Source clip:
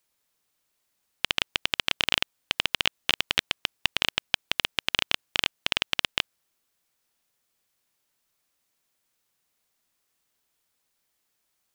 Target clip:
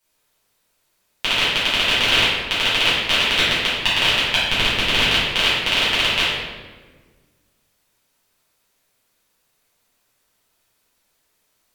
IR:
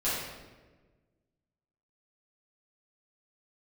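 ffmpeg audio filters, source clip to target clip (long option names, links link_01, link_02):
-filter_complex "[0:a]asettb=1/sr,asplit=3[link_01][link_02][link_03];[link_01]atrim=end=4.424[link_04];[link_02]atrim=start=4.42:end=5.02,asetpts=PTS-STARTPTS,afade=type=in:duration=0.004:curve=qsin,afade=type=out:start_time=0.596:duration=0.004:curve=qsin,lowshelf=frequency=200:gain=10[link_05];[link_03]atrim=start=5.016[link_06];[link_04][link_05]acrossfade=duration=0.004:curve1=hsin:curve2=qsin[link_07];[link_07][link_06]acrossfade=duration=0.004:curve1=qsin:curve2=hsin[link_08];[1:a]atrim=start_sample=2205,asetrate=39690,aresample=44100[link_09];[link_08][link_09]afir=irnorm=-1:irlink=0,volume=1dB"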